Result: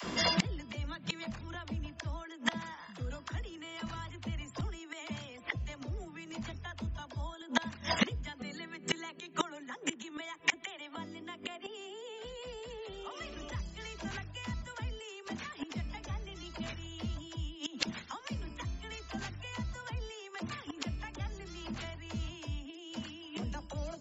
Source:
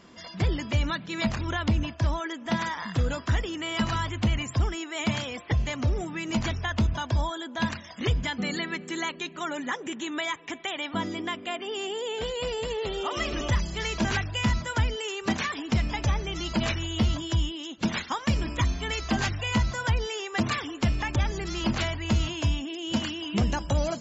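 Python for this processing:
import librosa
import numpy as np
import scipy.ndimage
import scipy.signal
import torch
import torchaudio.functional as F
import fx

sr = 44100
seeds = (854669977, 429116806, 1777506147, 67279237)

y = fx.dispersion(x, sr, late='lows', ms=44.0, hz=380.0)
y = fx.gate_flip(y, sr, shuts_db=-27.0, range_db=-28)
y = F.gain(torch.from_numpy(y), 14.0).numpy()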